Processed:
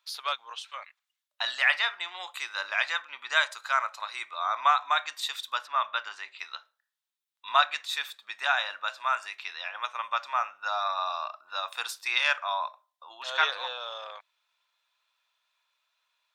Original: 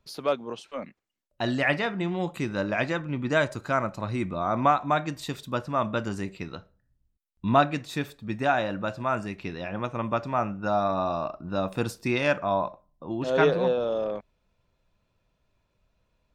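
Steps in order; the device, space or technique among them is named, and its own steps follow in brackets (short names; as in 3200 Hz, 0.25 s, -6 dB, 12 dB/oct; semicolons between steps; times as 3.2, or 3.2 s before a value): 5.67–6.39 LPF 3900 Hz 12 dB/oct; headphones lying on a table (HPF 1000 Hz 24 dB/oct; bell 3600 Hz +7 dB 0.36 oct); gain +3 dB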